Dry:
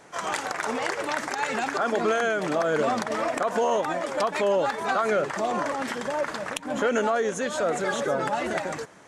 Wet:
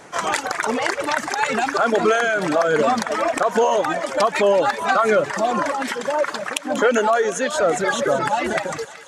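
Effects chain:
reverb reduction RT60 1.7 s
0:05.72–0:07.56: high-pass filter 200 Hz 12 dB per octave
feedback echo with a high-pass in the loop 188 ms, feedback 84%, high-pass 820 Hz, level −14.5 dB
level +8 dB

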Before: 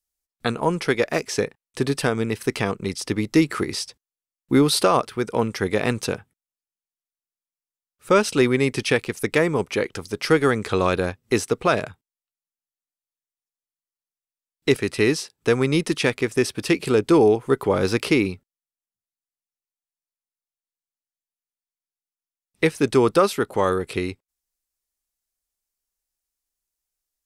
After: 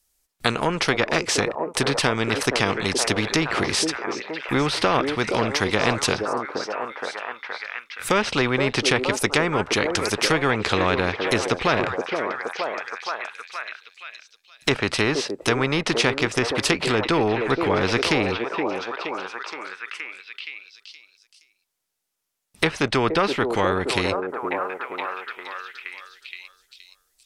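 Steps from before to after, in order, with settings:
treble cut that deepens with the level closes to 2,000 Hz, closed at −16 dBFS
echo through a band-pass that steps 471 ms, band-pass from 430 Hz, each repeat 0.7 octaves, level −4.5 dB
every bin compressed towards the loudest bin 2 to 1
level +3.5 dB

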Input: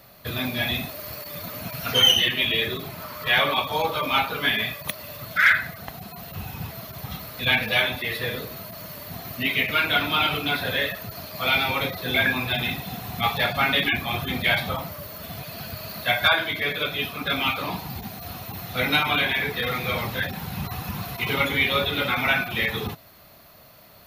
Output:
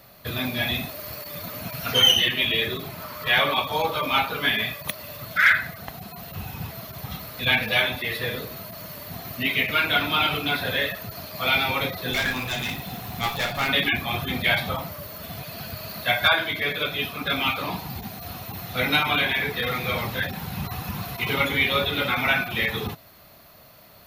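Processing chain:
0:12.13–0:13.68: asymmetric clip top −31.5 dBFS

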